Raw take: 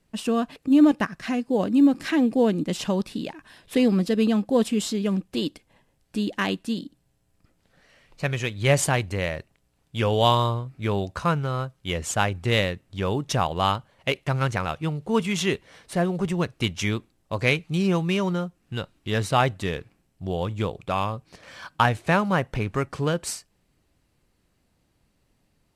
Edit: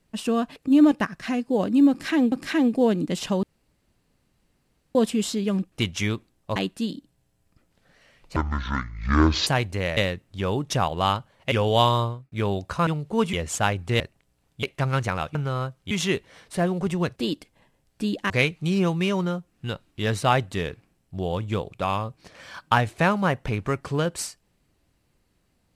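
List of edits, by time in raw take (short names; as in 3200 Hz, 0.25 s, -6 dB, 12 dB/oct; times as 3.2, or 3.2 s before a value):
1.9–2.32 loop, 2 plays
3.01–4.53 room tone
5.3–6.44 swap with 16.54–17.38
8.24–8.85 speed 55%
9.35–9.98 swap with 12.56–14.11
10.5–10.78 fade out
11.33–11.89 swap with 14.83–15.29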